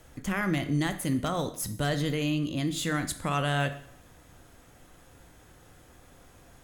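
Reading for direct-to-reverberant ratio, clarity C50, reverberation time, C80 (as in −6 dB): 8.5 dB, 12.5 dB, 0.65 s, 16.0 dB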